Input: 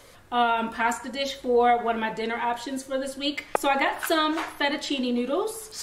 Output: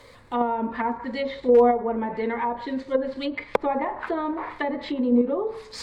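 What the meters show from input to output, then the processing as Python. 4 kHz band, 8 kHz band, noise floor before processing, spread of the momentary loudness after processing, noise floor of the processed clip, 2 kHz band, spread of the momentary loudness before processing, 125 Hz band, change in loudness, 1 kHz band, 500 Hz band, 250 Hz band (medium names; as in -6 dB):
-10.5 dB, under -10 dB, -49 dBFS, 11 LU, -48 dBFS, -6.0 dB, 8 LU, +3.0 dB, +1.0 dB, -1.5 dB, +3.5 dB, +3.5 dB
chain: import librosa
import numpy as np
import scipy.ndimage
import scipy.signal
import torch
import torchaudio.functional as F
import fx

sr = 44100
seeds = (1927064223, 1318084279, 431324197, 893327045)

p1 = scipy.ndimage.median_filter(x, 5, mode='constant')
p2 = fx.env_lowpass_down(p1, sr, base_hz=840.0, full_db=-22.5)
p3 = fx.ripple_eq(p2, sr, per_octave=0.97, db=7)
p4 = fx.level_steps(p3, sr, step_db=22)
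p5 = p3 + (p4 * librosa.db_to_amplitude(-2.5))
y = np.clip(10.0 ** (9.5 / 20.0) * p5, -1.0, 1.0) / 10.0 ** (9.5 / 20.0)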